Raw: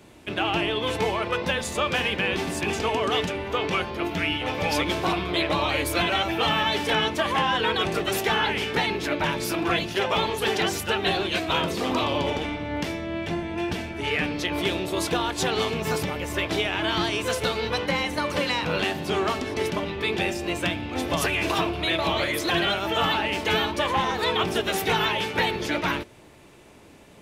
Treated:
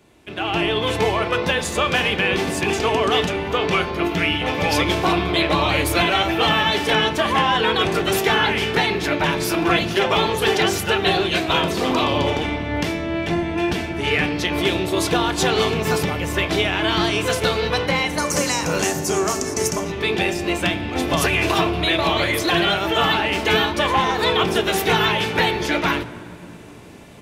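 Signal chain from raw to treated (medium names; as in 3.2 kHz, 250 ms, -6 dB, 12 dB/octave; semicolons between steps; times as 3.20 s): 18.18–19.92 s: resonant high shelf 4.8 kHz +11 dB, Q 3; level rider gain up to 11 dB; on a send: reverberation RT60 2.9 s, pre-delay 3 ms, DRR 10 dB; on the sum: trim -4.5 dB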